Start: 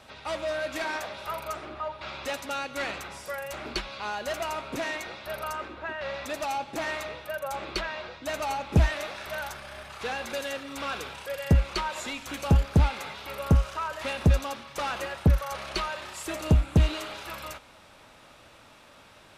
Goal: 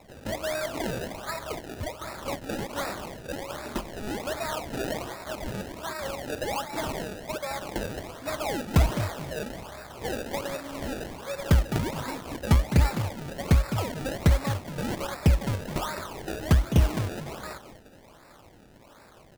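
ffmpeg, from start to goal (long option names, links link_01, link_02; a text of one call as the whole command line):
ffmpeg -i in.wav -filter_complex "[0:a]asplit=4[link_01][link_02][link_03][link_04];[link_02]adelay=208,afreqshift=42,volume=-10dB[link_05];[link_03]adelay=416,afreqshift=84,volume=-20.5dB[link_06];[link_04]adelay=624,afreqshift=126,volume=-30.9dB[link_07];[link_01][link_05][link_06][link_07]amix=inputs=4:normalize=0,acrusher=samples=28:mix=1:aa=0.000001:lfo=1:lforange=28:lforate=1.3" out.wav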